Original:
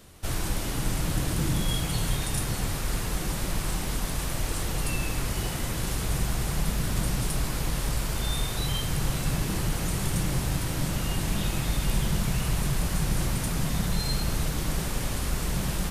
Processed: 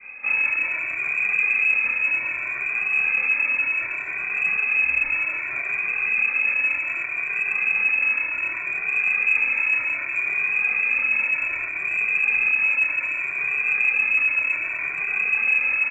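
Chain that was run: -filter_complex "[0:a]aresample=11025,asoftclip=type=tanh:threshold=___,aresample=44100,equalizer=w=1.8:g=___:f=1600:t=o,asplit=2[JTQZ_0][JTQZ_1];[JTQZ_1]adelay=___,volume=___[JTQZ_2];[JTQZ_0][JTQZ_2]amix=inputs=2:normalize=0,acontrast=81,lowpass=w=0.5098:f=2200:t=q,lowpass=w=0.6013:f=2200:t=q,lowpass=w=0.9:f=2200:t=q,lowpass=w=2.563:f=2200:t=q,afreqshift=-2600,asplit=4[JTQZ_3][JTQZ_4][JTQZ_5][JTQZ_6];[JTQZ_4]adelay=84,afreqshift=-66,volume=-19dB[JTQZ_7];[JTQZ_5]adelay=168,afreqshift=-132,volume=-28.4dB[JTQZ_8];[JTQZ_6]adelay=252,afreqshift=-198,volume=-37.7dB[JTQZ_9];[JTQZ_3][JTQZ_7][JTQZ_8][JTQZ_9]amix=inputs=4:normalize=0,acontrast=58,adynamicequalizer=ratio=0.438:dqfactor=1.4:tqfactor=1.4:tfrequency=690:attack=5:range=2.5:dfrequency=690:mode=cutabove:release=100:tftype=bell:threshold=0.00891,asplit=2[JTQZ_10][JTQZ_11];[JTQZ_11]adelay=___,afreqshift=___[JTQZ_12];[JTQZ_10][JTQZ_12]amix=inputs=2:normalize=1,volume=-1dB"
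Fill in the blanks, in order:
-30.5dB, -3, 28, -4dB, 2, 0.65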